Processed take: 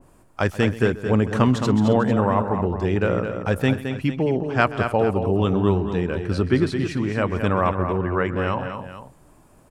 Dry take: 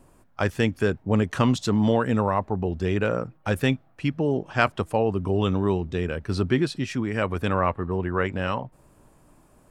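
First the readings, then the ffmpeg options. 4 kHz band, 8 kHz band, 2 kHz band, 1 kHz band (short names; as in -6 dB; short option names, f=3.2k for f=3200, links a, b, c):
0.0 dB, n/a, +2.0 dB, +3.0 dB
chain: -af "aecho=1:1:130|217|268|448:0.126|0.422|0.126|0.188,adynamicequalizer=threshold=0.00891:dfrequency=2100:dqfactor=0.7:tfrequency=2100:tqfactor=0.7:attack=5:release=100:ratio=0.375:range=2.5:mode=cutabove:tftype=highshelf,volume=2.5dB"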